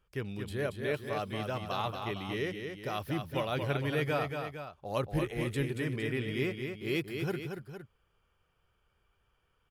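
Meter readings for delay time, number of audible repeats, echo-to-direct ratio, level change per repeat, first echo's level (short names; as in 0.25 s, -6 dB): 0.23 s, 2, -4.5 dB, -4.5 dB, -6.0 dB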